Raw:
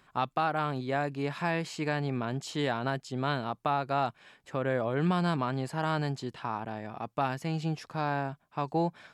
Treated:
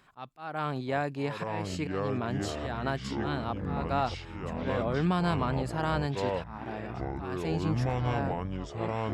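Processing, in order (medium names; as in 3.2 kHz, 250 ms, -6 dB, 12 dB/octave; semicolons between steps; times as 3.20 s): slow attack 307 ms; ever faster or slower copies 637 ms, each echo -6 st, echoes 3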